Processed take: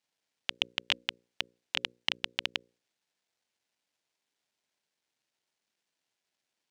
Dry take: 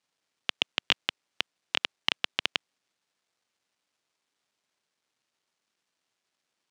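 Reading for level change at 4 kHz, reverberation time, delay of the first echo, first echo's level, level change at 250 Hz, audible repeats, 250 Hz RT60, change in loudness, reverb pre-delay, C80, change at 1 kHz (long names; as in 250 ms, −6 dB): −3.0 dB, no reverb audible, no echo audible, no echo audible, −4.0 dB, no echo audible, no reverb audible, −3.0 dB, no reverb audible, no reverb audible, −5.5 dB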